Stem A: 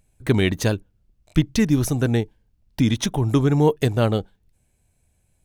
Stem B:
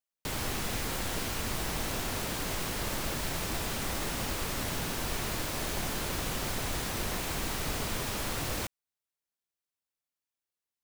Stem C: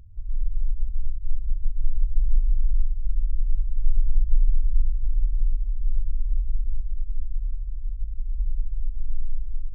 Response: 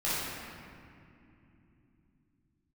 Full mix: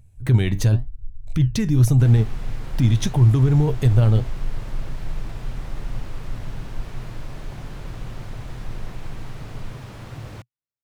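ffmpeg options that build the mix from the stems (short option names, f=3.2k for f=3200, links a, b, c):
-filter_complex "[0:a]flanger=delay=4.4:depth=5.7:regen=76:speed=0.88:shape=sinusoidal,volume=3dB[a];[1:a]aemphasis=mode=reproduction:type=75kf,adelay=1750,volume=-5.5dB[b];[2:a]volume=-13dB,asplit=2[c][d];[d]volume=-9dB[e];[a][c]amix=inputs=2:normalize=0,alimiter=limit=-15.5dB:level=0:latency=1:release=49,volume=0dB[f];[3:a]atrim=start_sample=2205[g];[e][g]afir=irnorm=-1:irlink=0[h];[b][f][h]amix=inputs=3:normalize=0,equalizer=f=120:t=o:w=0.75:g=14.5"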